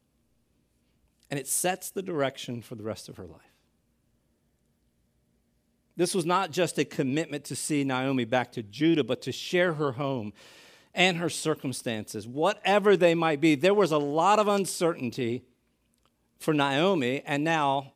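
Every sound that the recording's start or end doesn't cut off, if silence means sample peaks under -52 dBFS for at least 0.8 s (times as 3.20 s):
1.23–3.46 s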